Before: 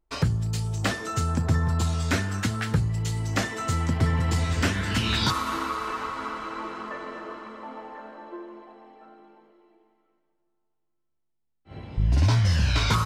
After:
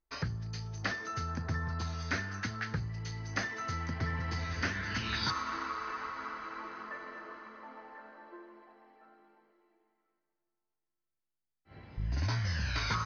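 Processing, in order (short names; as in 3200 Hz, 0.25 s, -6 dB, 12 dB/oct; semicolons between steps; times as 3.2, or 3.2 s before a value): rippled Chebyshev low-pass 6400 Hz, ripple 9 dB; gain -3.5 dB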